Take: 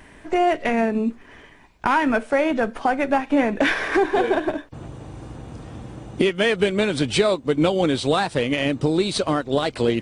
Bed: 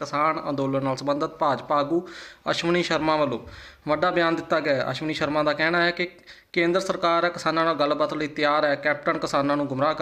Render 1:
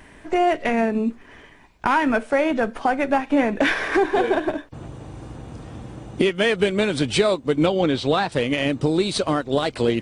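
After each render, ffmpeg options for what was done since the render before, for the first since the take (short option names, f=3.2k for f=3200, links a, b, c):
-filter_complex "[0:a]asettb=1/sr,asplit=3[a][b][c];[a]atrim=end=7.664[d];[b]atrim=start=7.66:end=8.32,asetpts=PTS-STARTPTS,afade=t=in:d=0.004:c=qsin,afade=t=out:st=0.656:d=0.004:c=qsin,lowpass=5.2k[e];[c]atrim=start=8.316[f];[d][e]acrossfade=d=0.004:c1=hsin:c2=qsin[g];[g][f]acrossfade=d=0.004:c1=qsin:c2=hsin"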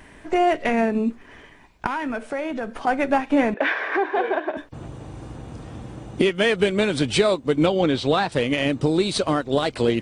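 -filter_complex "[0:a]asettb=1/sr,asplit=3[a][b][c];[a]atrim=end=1.864[d];[b]atrim=start=1.86:end=2.87,asetpts=PTS-STARTPTS,afade=t=in:d=0.004:c=qsin,afade=t=out:st=1.006:d=0.004:c=qsin,acompressor=threshold=-27dB:ratio=2.5:attack=3.2:release=140:knee=1:detection=peak[e];[c]atrim=start=2.866[f];[d][e]acrossfade=d=0.004:c1=hsin:c2=qsin[g];[g][f]acrossfade=d=0.004:c1=qsin:c2=hsin,asettb=1/sr,asplit=3[h][i][j];[h]atrim=end=3.544[k];[i]atrim=start=3.54:end=4.57,asetpts=PTS-STARTPTS,afade=t=in:d=0.004:c=qsin,afade=t=out:st=1.026:d=0.004:c=qsin,highpass=460,lowpass=2.5k[l];[j]atrim=start=4.566[m];[k][l]acrossfade=d=0.004:c1=hsin:c2=qsin[n];[n][m]acrossfade=d=0.004:c1=qsin:c2=hsin"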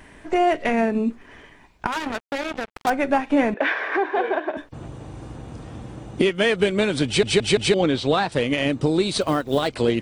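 -filter_complex "[0:a]asettb=1/sr,asplit=3[a][b][c];[a]atrim=end=1.924[d];[b]atrim=start=1.92:end=2.9,asetpts=PTS-STARTPTS,afade=t=in:d=0.004:c=qsin,afade=t=out:st=0.976:d=0.004:c=qsin,acrusher=bits=3:mix=0:aa=0.5[e];[c]atrim=start=2.896[f];[d][e]acrossfade=d=0.004:c1=hsin:c2=qsin[g];[g][f]acrossfade=d=0.004:c1=qsin:c2=hsin,asplit=3[h][i][j];[h]afade=t=out:st=9.2:d=0.02[k];[i]acrusher=bits=7:mode=log:mix=0:aa=0.000001,afade=t=in:st=9.2:d=0.02,afade=t=out:st=9.67:d=0.02[l];[j]afade=t=in:st=9.67:d=0.02[m];[k][l][m]amix=inputs=3:normalize=0,asplit=5[n][o][p][q][r];[n]atrim=end=7.232[s];[o]atrim=start=7.058:end=7.232[t];[p]atrim=start=7.058:end=7.232[u];[q]atrim=start=7.058:end=7.232[v];[r]atrim=start=7.738[w];[s][t]acrossfade=d=0.004:c1=hsin:c2=hsin[x];[x][u]acrossfade=d=0.004:c1=hsin:c2=hsin[y];[y][v]acrossfade=d=0.004:c1=hsin:c2=hsin[z];[z][w]acrossfade=d=0.004:c1=hsin:c2=hsin"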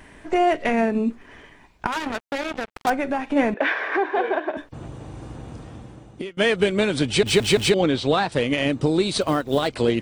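-filter_complex "[0:a]asplit=3[a][b][c];[a]afade=t=out:st=2.95:d=0.02[d];[b]acompressor=threshold=-20dB:ratio=4:attack=3.2:release=140:knee=1:detection=peak,afade=t=in:st=2.95:d=0.02,afade=t=out:st=3.35:d=0.02[e];[c]afade=t=in:st=3.35:d=0.02[f];[d][e][f]amix=inputs=3:normalize=0,asettb=1/sr,asplit=3[g][h][i];[g]atrim=end=7.264[j];[h]atrim=start=7.26:end=7.7,asetpts=PTS-STARTPTS,afade=t=in:d=0.004:c=qsin,afade=t=out:st=0.436:d=0.004:c=qsin,aeval=exprs='val(0)+0.5*0.0299*sgn(val(0))':c=same[k];[i]atrim=start=7.696[l];[j][k]acrossfade=d=0.004:c1=hsin:c2=qsin[m];[m][l]acrossfade=d=0.004:c1=qsin:c2=hsin,asplit=2[n][o];[n]atrim=end=6.37,asetpts=PTS-STARTPTS,afade=t=out:st=5.48:d=0.89:silence=0.0891251[p];[o]atrim=start=6.37,asetpts=PTS-STARTPTS,afade=t=in:d=0.004:c=hsin:silence=0.0891251[q];[p][q]concat=n=2:v=0:a=1"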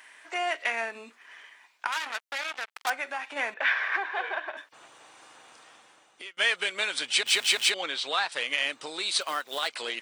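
-af "highpass=1.3k"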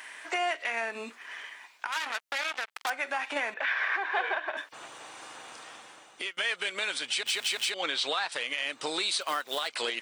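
-filter_complex "[0:a]asplit=2[a][b];[b]acompressor=threshold=-35dB:ratio=6,volume=2dB[c];[a][c]amix=inputs=2:normalize=0,alimiter=limit=-19dB:level=0:latency=1:release=223"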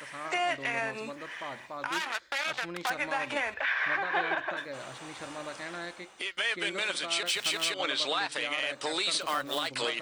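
-filter_complex "[1:a]volume=-18.5dB[a];[0:a][a]amix=inputs=2:normalize=0"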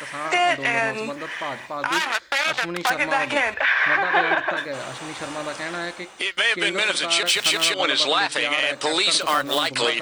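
-af "volume=10dB"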